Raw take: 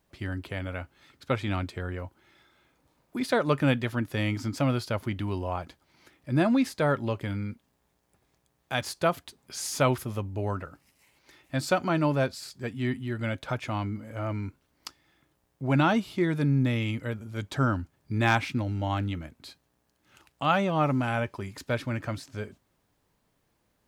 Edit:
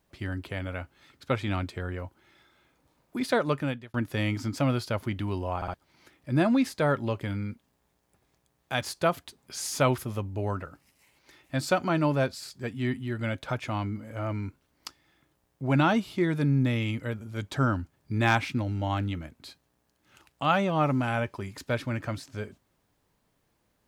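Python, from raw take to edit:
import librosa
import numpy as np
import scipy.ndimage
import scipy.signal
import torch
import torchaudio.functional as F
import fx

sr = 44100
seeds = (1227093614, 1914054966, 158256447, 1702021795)

y = fx.edit(x, sr, fx.fade_out_span(start_s=3.37, length_s=0.57),
    fx.stutter_over(start_s=5.56, slice_s=0.06, count=3), tone=tone)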